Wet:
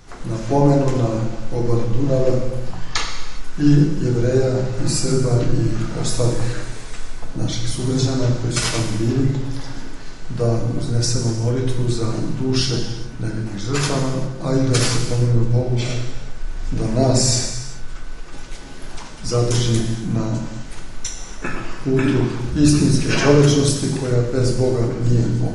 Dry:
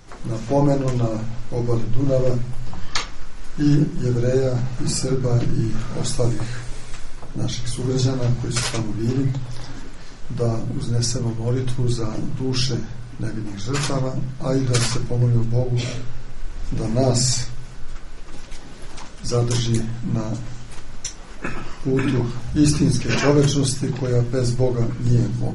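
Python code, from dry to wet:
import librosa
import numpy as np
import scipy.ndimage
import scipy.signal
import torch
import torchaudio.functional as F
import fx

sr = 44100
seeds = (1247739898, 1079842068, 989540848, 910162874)

y = fx.rev_gated(x, sr, seeds[0], gate_ms=430, shape='falling', drr_db=2.5)
y = F.gain(torch.from_numpy(y), 1.0).numpy()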